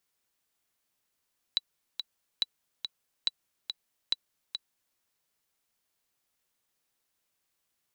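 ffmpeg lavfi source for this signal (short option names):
-f lavfi -i "aevalsrc='pow(10,(-13-7.5*gte(mod(t,2*60/141),60/141))/20)*sin(2*PI*3940*mod(t,60/141))*exp(-6.91*mod(t,60/141)/0.03)':d=3.4:s=44100"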